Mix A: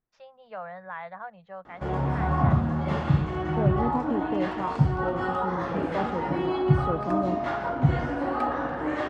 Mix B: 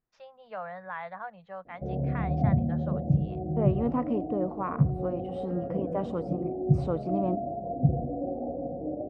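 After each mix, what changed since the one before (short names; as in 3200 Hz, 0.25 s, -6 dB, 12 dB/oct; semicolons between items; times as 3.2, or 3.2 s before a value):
background: add rippled Chebyshev low-pass 740 Hz, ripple 6 dB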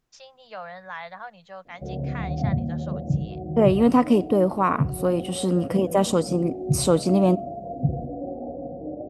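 second voice +11.0 dB; master: remove LPF 1700 Hz 12 dB/oct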